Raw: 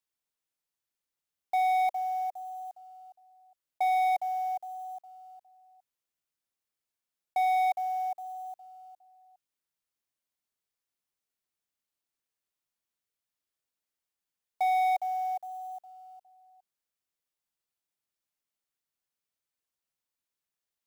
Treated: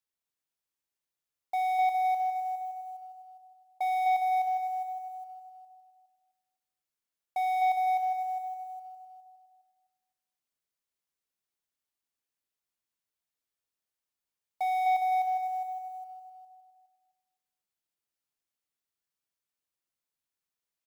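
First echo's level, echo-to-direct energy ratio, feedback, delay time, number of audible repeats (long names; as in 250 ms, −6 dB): −4.0 dB, −3.5 dB, 28%, 255 ms, 3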